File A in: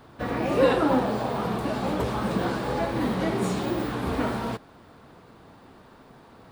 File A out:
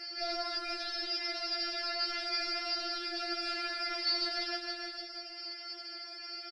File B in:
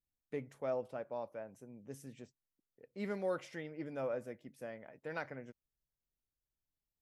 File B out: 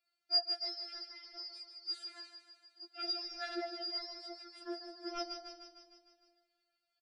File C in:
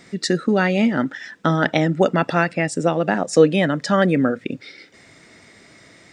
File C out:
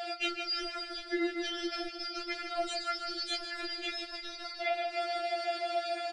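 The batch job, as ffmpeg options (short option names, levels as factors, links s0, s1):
-filter_complex "[0:a]afftfilt=real='real(if(lt(b,272),68*(eq(floor(b/68),0)*1+eq(floor(b/68),1)*2+eq(floor(b/68),2)*3+eq(floor(b/68),3)*0)+mod(b,68),b),0)':imag='imag(if(lt(b,272),68*(eq(floor(b/68),0)*1+eq(floor(b/68),1)*2+eq(floor(b/68),2)*3+eq(floor(b/68),3)*0)+mod(b,68),b),0)':win_size=2048:overlap=0.75,asplit=2[s0][s1];[s1]highpass=f=720:p=1,volume=28.2,asoftclip=type=tanh:threshold=0.944[s2];[s0][s2]amix=inputs=2:normalize=0,lowpass=f=1900:p=1,volume=0.501,equalizer=f=315:t=o:w=0.33:g=-4,equalizer=f=1250:t=o:w=0.33:g=5,equalizer=f=6300:t=o:w=0.33:g=-4,aresample=22050,aresample=44100,alimiter=limit=0.266:level=0:latency=1,asuperstop=centerf=1000:order=4:qfactor=5.1,highshelf=f=5400:g=-10,asplit=2[s3][s4];[s4]aecho=0:1:152|304|456|608|760|912|1064:0.335|0.201|0.121|0.0724|0.0434|0.026|0.0156[s5];[s3][s5]amix=inputs=2:normalize=0,acompressor=threshold=0.0631:ratio=6,asplit=2[s6][s7];[s7]adelay=370,lowpass=f=2500:p=1,volume=0.0794,asplit=2[s8][s9];[s9]adelay=370,lowpass=f=2500:p=1,volume=0.38,asplit=2[s10][s11];[s11]adelay=370,lowpass=f=2500:p=1,volume=0.38[s12];[s8][s10][s12]amix=inputs=3:normalize=0[s13];[s6][s13]amix=inputs=2:normalize=0,acrossover=split=5000[s14][s15];[s15]acompressor=threshold=0.00794:ratio=4:attack=1:release=60[s16];[s14][s16]amix=inputs=2:normalize=0,afftfilt=real='re*4*eq(mod(b,16),0)':imag='im*4*eq(mod(b,16),0)':win_size=2048:overlap=0.75,volume=0.794"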